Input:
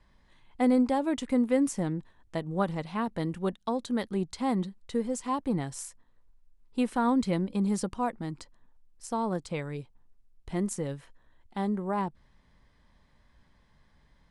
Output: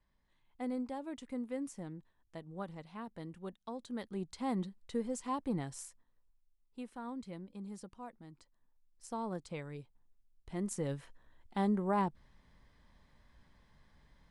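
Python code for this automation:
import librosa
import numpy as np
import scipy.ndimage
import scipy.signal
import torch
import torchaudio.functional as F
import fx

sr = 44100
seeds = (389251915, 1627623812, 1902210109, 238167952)

y = fx.gain(x, sr, db=fx.line((3.55, -14.5), (4.59, -6.5), (5.71, -6.5), (6.87, -18.0), (8.32, -18.0), (9.06, -9.0), (10.54, -9.0), (10.94, -1.5)))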